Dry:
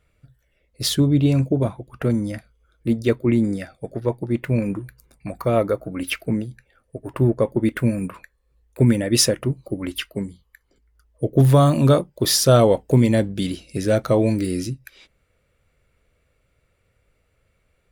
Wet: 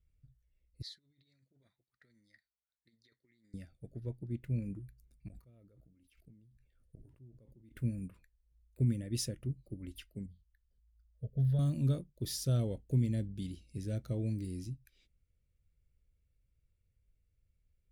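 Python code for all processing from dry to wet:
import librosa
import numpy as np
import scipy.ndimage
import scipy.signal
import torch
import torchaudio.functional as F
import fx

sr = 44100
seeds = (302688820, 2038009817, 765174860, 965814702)

y = fx.chain(x, sr, fx.over_compress(threshold_db=-20.0, ratio=-0.5),
    fx.double_bandpass(hz=2800.0, octaves=1.1), at=(0.82, 3.54))
y = fx.chain(y, sr, fx.gate_flip(shuts_db=-26.0, range_db=-25),
    fx.sustainer(db_per_s=54.0), at=(5.28, 7.73))
y = fx.chain(y, sr, fx.high_shelf(hz=5300.0, db=-10.0),
    fx.fixed_phaser(hz=1600.0, stages=8), at=(10.26, 11.59))
y = fx.tone_stack(y, sr, knobs='10-0-1')
y = fx.notch(y, sr, hz=1100.0, q=18.0)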